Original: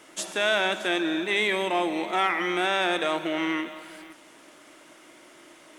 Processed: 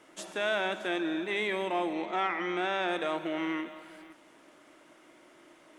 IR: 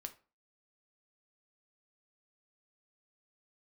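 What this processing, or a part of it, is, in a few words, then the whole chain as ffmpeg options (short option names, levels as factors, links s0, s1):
behind a face mask: -filter_complex "[0:a]asettb=1/sr,asplit=3[s0][s1][s2];[s0]atrim=end=1.934[s3];[s1]atrim=start=1.93:end=2.88,asetpts=PTS-STARTPTS,afade=t=in:d=0.004:c=qsin,afade=t=out:st=0.946:d=0.004:c=qsin,lowpass=f=7400:w=0.5412,lowpass=f=7400:w=1.3066[s4];[s2]atrim=start=2.876[s5];[s3][s4]acrossfade=d=0.004:c1=hsin:c2=qsin[s6];[s6][s5]acrossfade=d=0.004:c1=qsin:c2=hsin,highshelf=f=2700:g=-8,volume=0.596"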